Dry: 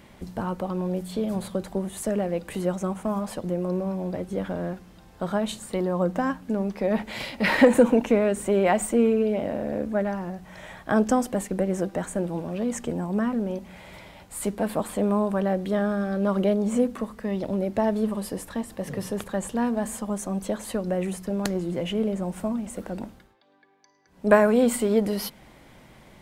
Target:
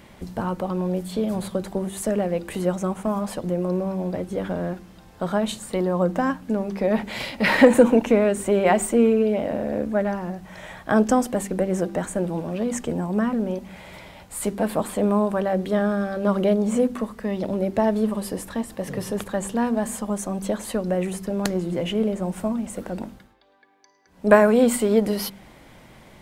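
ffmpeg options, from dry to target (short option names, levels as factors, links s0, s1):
-af "bandreject=f=48.85:t=h:w=4,bandreject=f=97.7:t=h:w=4,bandreject=f=146.55:t=h:w=4,bandreject=f=195.4:t=h:w=4,bandreject=f=244.25:t=h:w=4,bandreject=f=293.1:t=h:w=4,bandreject=f=341.95:t=h:w=4,bandreject=f=390.8:t=h:w=4,volume=1.41"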